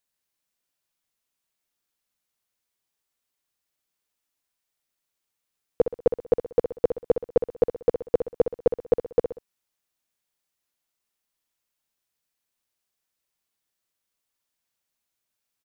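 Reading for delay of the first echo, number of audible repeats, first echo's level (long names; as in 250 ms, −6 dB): 63 ms, 3, −9.0 dB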